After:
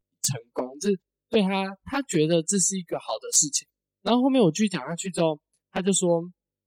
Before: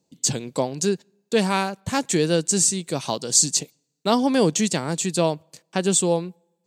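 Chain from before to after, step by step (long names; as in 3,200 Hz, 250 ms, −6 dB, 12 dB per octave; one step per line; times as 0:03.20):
hum with harmonics 50 Hz, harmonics 12, −57 dBFS −4 dB per octave
noise reduction from a noise print of the clip's start 29 dB
flanger swept by the level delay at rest 11.5 ms, full sweep at −16.5 dBFS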